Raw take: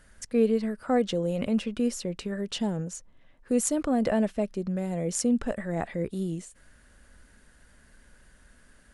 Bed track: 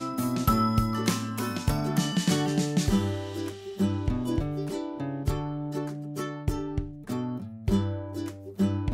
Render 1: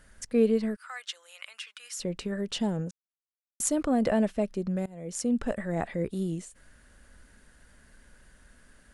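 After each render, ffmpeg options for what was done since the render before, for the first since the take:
ffmpeg -i in.wav -filter_complex "[0:a]asettb=1/sr,asplit=3[link_01][link_02][link_03];[link_01]atrim=end=0.764[link_04];[link_02]atrim=start=0.76:end=2,asetpts=PTS-STARTPTS,afade=type=in:duration=0.004:curve=qsin,afade=type=out:start_time=1.236:duration=0.004:curve=qsin,highpass=frequency=1300:width=0.5412,highpass=frequency=1300:width=1.3066[link_05];[link_03]atrim=start=1.996[link_06];[link_04][link_05]acrossfade=duration=0.004:curve1=hsin:curve2=qsin[link_07];[link_07][link_06]acrossfade=duration=0.004:curve1=qsin:curve2=hsin,asplit=4[link_08][link_09][link_10][link_11];[link_08]atrim=end=2.91,asetpts=PTS-STARTPTS,afade=type=out:start_time=2.906:duration=0.004:curve=hsin[link_12];[link_09]atrim=start=2.91:end=3.6,asetpts=PTS-STARTPTS,volume=0[link_13];[link_10]atrim=start=3.6:end=4.86,asetpts=PTS-STARTPTS,afade=type=in:duration=0.004:curve=hsin,afade=type=out:start_time=1.256:duration=0.004:curve=hsin:silence=0.0794328[link_14];[link_11]atrim=start=4.86,asetpts=PTS-STARTPTS,afade=type=in:duration=0.62:silence=0.0794328[link_15];[link_12][link_13][link_14][link_15]concat=n=4:v=0:a=1" out.wav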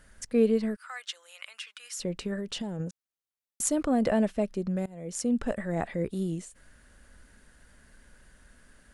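ffmpeg -i in.wav -filter_complex "[0:a]asettb=1/sr,asplit=3[link_01][link_02][link_03];[link_01]atrim=end=2.384[link_04];[link_02]atrim=start=2.38:end=2.8,asetpts=PTS-STARTPTS,afade=type=in:duration=0.004:curve=qsin,afade=type=out:start_time=0.416:duration=0.004:curve=qsin,acompressor=threshold=-30dB:ratio=6:attack=3.2:release=140:knee=1:detection=peak[link_05];[link_03]atrim=start=2.796[link_06];[link_04][link_05]acrossfade=duration=0.004:curve1=hsin:curve2=qsin[link_07];[link_07][link_06]acrossfade=duration=0.004:curve1=qsin:curve2=hsin" out.wav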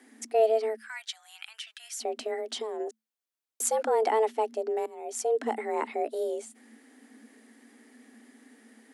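ffmpeg -i in.wav -af "afreqshift=220" out.wav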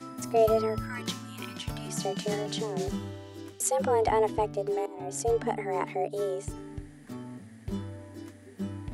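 ffmpeg -i in.wav -i bed.wav -filter_complex "[1:a]volume=-10dB[link_01];[0:a][link_01]amix=inputs=2:normalize=0" out.wav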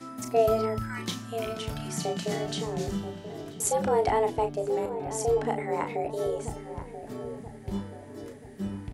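ffmpeg -i in.wav -filter_complex "[0:a]asplit=2[link_01][link_02];[link_02]adelay=35,volume=-8dB[link_03];[link_01][link_03]amix=inputs=2:normalize=0,asplit=2[link_04][link_05];[link_05]adelay=983,lowpass=frequency=1000:poles=1,volume=-10dB,asplit=2[link_06][link_07];[link_07]adelay=983,lowpass=frequency=1000:poles=1,volume=0.54,asplit=2[link_08][link_09];[link_09]adelay=983,lowpass=frequency=1000:poles=1,volume=0.54,asplit=2[link_10][link_11];[link_11]adelay=983,lowpass=frequency=1000:poles=1,volume=0.54,asplit=2[link_12][link_13];[link_13]adelay=983,lowpass=frequency=1000:poles=1,volume=0.54,asplit=2[link_14][link_15];[link_15]adelay=983,lowpass=frequency=1000:poles=1,volume=0.54[link_16];[link_04][link_06][link_08][link_10][link_12][link_14][link_16]amix=inputs=7:normalize=0" out.wav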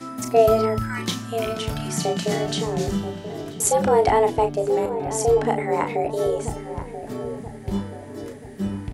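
ffmpeg -i in.wav -af "volume=7dB" out.wav

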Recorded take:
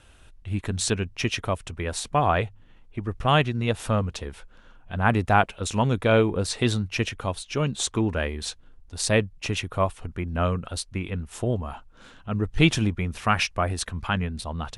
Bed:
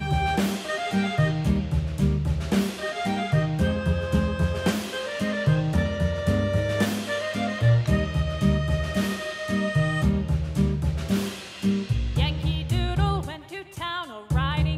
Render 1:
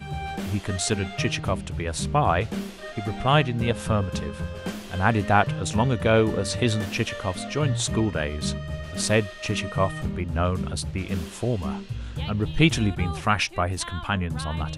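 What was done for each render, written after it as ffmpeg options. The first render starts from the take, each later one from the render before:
ffmpeg -i in.wav -i bed.wav -filter_complex "[1:a]volume=-8dB[link_01];[0:a][link_01]amix=inputs=2:normalize=0" out.wav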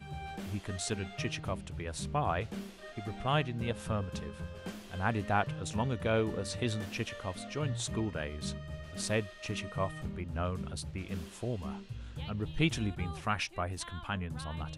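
ffmpeg -i in.wav -af "volume=-10.5dB" out.wav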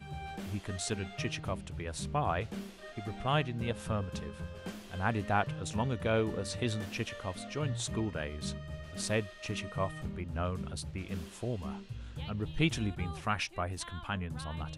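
ffmpeg -i in.wav -af anull out.wav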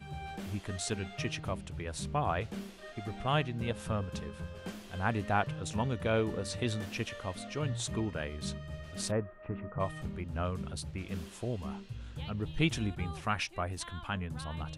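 ffmpeg -i in.wav -filter_complex "[0:a]asplit=3[link_01][link_02][link_03];[link_01]afade=type=out:start_time=9.1:duration=0.02[link_04];[link_02]lowpass=frequency=1500:width=0.5412,lowpass=frequency=1500:width=1.3066,afade=type=in:start_time=9.1:duration=0.02,afade=type=out:start_time=9.79:duration=0.02[link_05];[link_03]afade=type=in:start_time=9.79:duration=0.02[link_06];[link_04][link_05][link_06]amix=inputs=3:normalize=0" out.wav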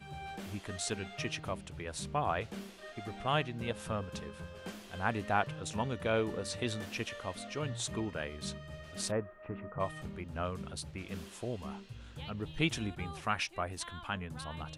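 ffmpeg -i in.wav -af "lowshelf=frequency=190:gain=-7" out.wav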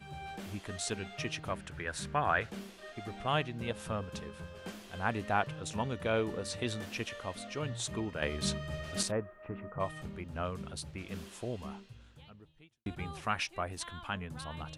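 ffmpeg -i in.wav -filter_complex "[0:a]asettb=1/sr,asplit=3[link_01][link_02][link_03];[link_01]atrim=end=1.504[link_04];[link_02]atrim=start=1.5:end=2.5,asetpts=PTS-STARTPTS,afade=type=in:duration=0.004:curve=qsin,afade=type=out:start_time=0.996:duration=0.004:curve=qsin,equalizer=frequency=1600:width=2.2:gain=12[link_05];[link_03]atrim=start=2.496[link_06];[link_04][link_05]acrossfade=duration=0.004:curve1=hsin:curve2=qsin[link_07];[link_07][link_06]acrossfade=duration=0.004:curve1=qsin:curve2=hsin,asettb=1/sr,asplit=3[link_08][link_09][link_10];[link_08]atrim=end=8.224[link_11];[link_09]atrim=start=8.22:end=9.03,asetpts=PTS-STARTPTS,afade=type=in:duration=0.004:curve=qsin,afade=type=out:start_time=0.806:duration=0.004:curve=qsin,acontrast=87[link_12];[link_10]atrim=start=9.026[link_13];[link_11][link_12]acrossfade=duration=0.004:curve1=hsin:curve2=qsin[link_14];[link_14][link_13]acrossfade=duration=0.004:curve1=qsin:curve2=hsin,asplit=2[link_15][link_16];[link_15]atrim=end=12.86,asetpts=PTS-STARTPTS,afade=type=out:start_time=11.64:duration=1.22:curve=qua[link_17];[link_16]atrim=start=12.86,asetpts=PTS-STARTPTS,afade=type=in:duration=0.004:curve=hsin[link_18];[link_17][link_18]concat=n=2:v=0:a=1" out.wav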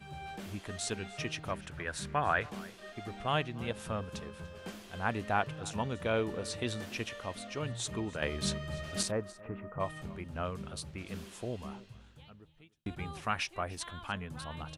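ffmpeg -i in.wav -af "aecho=1:1:293:0.0944" out.wav

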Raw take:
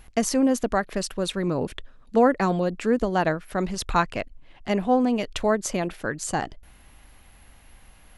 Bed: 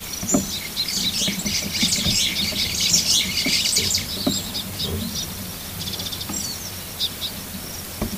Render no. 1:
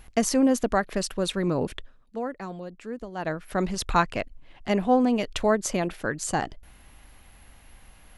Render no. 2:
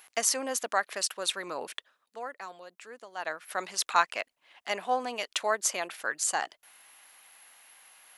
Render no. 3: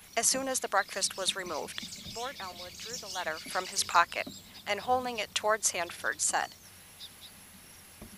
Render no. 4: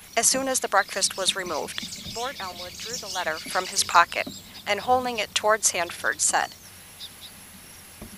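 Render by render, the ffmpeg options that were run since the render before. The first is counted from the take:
ffmpeg -i in.wav -filter_complex "[0:a]asplit=3[link_01][link_02][link_03];[link_01]atrim=end=2.1,asetpts=PTS-STARTPTS,afade=type=out:start_time=1.74:duration=0.36:silence=0.211349[link_04];[link_02]atrim=start=2.1:end=3.15,asetpts=PTS-STARTPTS,volume=-13.5dB[link_05];[link_03]atrim=start=3.15,asetpts=PTS-STARTPTS,afade=type=in:duration=0.36:silence=0.211349[link_06];[link_04][link_05][link_06]concat=n=3:v=0:a=1" out.wav
ffmpeg -i in.wav -af "highpass=850,highshelf=frequency=6300:gain=5.5" out.wav
ffmpeg -i in.wav -i bed.wav -filter_complex "[1:a]volume=-23dB[link_01];[0:a][link_01]amix=inputs=2:normalize=0" out.wav
ffmpeg -i in.wav -af "volume=7dB,alimiter=limit=-3dB:level=0:latency=1" out.wav

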